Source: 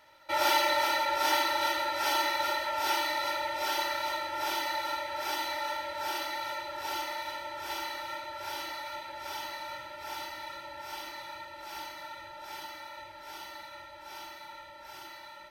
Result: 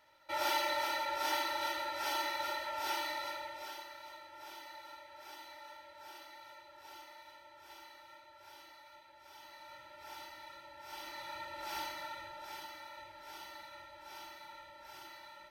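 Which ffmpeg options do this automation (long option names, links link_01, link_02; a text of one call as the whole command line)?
ffmpeg -i in.wav -af "volume=11.5dB,afade=type=out:start_time=3.09:duration=0.75:silence=0.298538,afade=type=in:start_time=9.32:duration=0.68:silence=0.398107,afade=type=in:start_time=10.79:duration=0.91:silence=0.281838,afade=type=out:start_time=11.7:duration=0.95:silence=0.473151" out.wav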